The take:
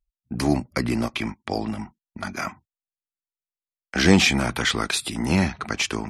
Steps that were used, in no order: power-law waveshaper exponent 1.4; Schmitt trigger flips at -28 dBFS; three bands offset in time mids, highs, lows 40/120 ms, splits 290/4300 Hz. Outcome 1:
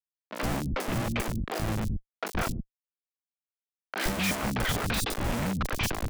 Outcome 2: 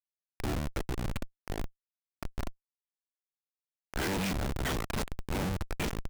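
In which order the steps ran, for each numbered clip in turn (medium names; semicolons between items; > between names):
Schmitt trigger > power-law waveshaper > three bands offset in time; power-law waveshaper > three bands offset in time > Schmitt trigger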